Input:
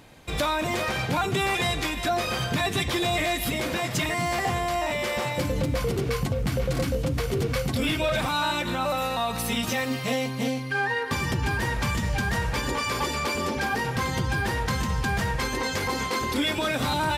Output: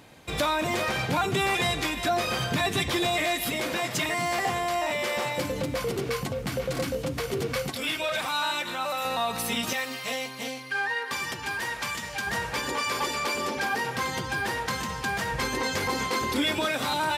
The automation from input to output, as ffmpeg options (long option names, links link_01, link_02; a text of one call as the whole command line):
ffmpeg -i in.wav -af "asetnsamples=nb_out_samples=441:pad=0,asendcmd='3.07 highpass f 270;7.7 highpass f 880;9.05 highpass f 260;9.73 highpass f 990;12.27 highpass f 380;15.32 highpass f 110;16.66 highpass f 400',highpass=frequency=97:poles=1" out.wav